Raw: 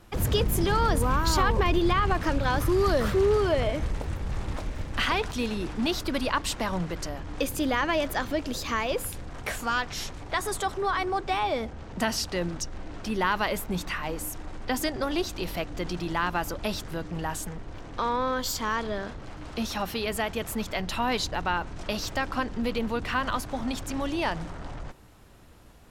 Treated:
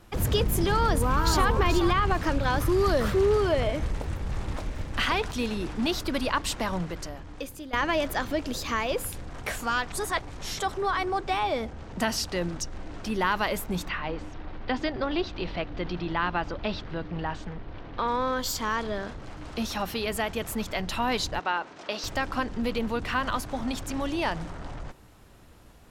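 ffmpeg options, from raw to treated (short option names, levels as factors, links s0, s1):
-filter_complex "[0:a]asplit=2[s0][s1];[s1]afade=t=in:st=0.73:d=0.01,afade=t=out:st=1.47:d=0.01,aecho=0:1:430|860:0.354813|0.053222[s2];[s0][s2]amix=inputs=2:normalize=0,asplit=3[s3][s4][s5];[s3]afade=t=out:st=13.87:d=0.02[s6];[s4]lowpass=f=4200:w=0.5412,lowpass=f=4200:w=1.3066,afade=t=in:st=13.87:d=0.02,afade=t=out:st=18.07:d=0.02[s7];[s5]afade=t=in:st=18.07:d=0.02[s8];[s6][s7][s8]amix=inputs=3:normalize=0,asettb=1/sr,asplit=3[s9][s10][s11];[s9]atrim=end=21.394[s12];[s10]atrim=start=21.39:end=22.04,asetpts=PTS-STARTPTS,afade=t=in:d=0.004:c=qsin,afade=t=out:st=0.646:d=0.004:c=qsin,highpass=340,lowpass=6000[s13];[s11]atrim=start=22.036[s14];[s12][s13]acrossfade=d=0.004:c1=hsin:c2=qsin[s15];[s15][s14]acrossfade=d=0.004:c1=qsin:c2=hsin,asplit=4[s16][s17][s18][s19];[s16]atrim=end=7.73,asetpts=PTS-STARTPTS,afade=t=out:st=6.69:d=1.04:silence=0.141254[s20];[s17]atrim=start=7.73:end=9.922,asetpts=PTS-STARTPTS,afade=t=in:d=0.004:c=hsin:silence=0.141254[s21];[s18]atrim=start=9.918:end=10.592,asetpts=PTS-STARTPTS,areverse[s22];[s19]atrim=start=10.588[s23];[s20][s21]concat=n=2:v=0:a=1[s24];[s24][s22]acrossfade=d=0.004:c1=hsin:c2=hsin[s25];[s25][s23]acrossfade=d=0.004:c1=hsin:c2=hsin"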